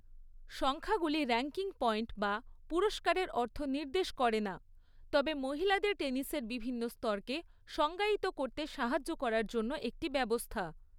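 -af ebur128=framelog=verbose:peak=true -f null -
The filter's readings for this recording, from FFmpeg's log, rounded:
Integrated loudness:
  I:         -35.1 LUFS
  Threshold: -45.3 LUFS
Loudness range:
  LRA:         1.6 LU
  Threshold: -55.2 LUFS
  LRA low:   -36.0 LUFS
  LRA high:  -34.4 LUFS
True peak:
  Peak:      -16.7 dBFS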